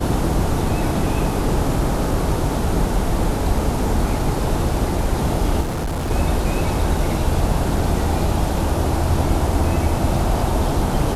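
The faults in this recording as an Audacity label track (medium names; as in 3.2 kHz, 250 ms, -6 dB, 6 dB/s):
5.610000	6.110000	clipped -20 dBFS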